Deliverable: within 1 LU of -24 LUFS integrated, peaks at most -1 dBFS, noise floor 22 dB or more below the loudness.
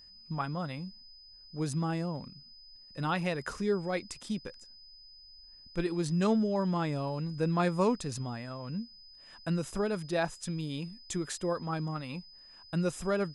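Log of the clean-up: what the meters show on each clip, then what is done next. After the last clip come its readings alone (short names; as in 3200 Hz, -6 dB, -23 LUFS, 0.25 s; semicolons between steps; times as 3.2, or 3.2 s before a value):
steady tone 5000 Hz; tone level -52 dBFS; loudness -33.5 LUFS; peak -16.0 dBFS; loudness target -24.0 LUFS
-> notch 5000 Hz, Q 30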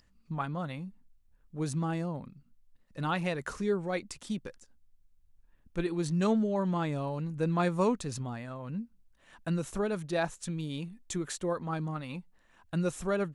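steady tone none; loudness -33.5 LUFS; peak -16.0 dBFS; loudness target -24.0 LUFS
-> gain +9.5 dB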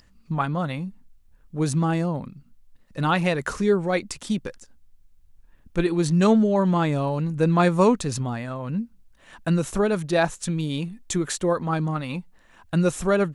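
loudness -24.0 LUFS; peak -6.5 dBFS; noise floor -57 dBFS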